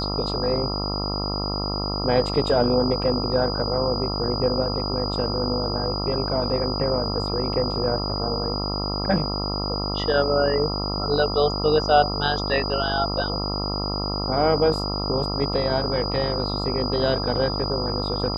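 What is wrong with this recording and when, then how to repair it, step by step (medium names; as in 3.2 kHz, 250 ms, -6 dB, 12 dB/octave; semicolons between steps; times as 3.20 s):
buzz 50 Hz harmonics 27 -28 dBFS
whine 4.9 kHz -29 dBFS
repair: band-stop 4.9 kHz, Q 30; de-hum 50 Hz, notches 27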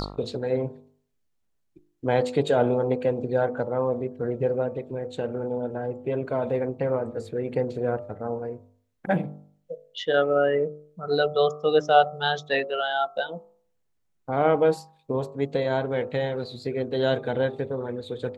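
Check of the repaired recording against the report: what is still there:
nothing left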